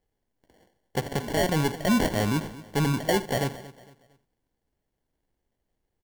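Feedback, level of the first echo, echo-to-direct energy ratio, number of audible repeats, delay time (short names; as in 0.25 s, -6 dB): no steady repeat, -16.5 dB, -13.5 dB, 4, 77 ms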